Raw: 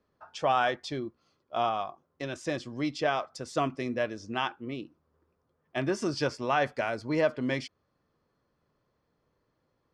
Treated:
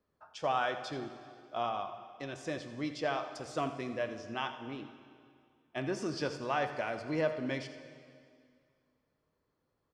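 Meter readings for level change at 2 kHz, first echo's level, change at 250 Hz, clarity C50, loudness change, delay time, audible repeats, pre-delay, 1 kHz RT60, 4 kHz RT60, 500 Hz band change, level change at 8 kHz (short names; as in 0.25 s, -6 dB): -5.5 dB, -14.5 dB, -5.5 dB, 8.5 dB, -5.5 dB, 84 ms, 1, 5 ms, 2.2 s, 2.0 s, -5.0 dB, -5.5 dB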